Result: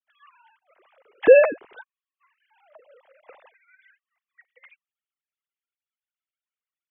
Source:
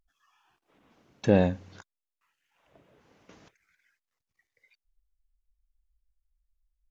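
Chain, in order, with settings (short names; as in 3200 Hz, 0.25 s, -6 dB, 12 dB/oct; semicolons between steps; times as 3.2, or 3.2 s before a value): sine-wave speech; gain +8.5 dB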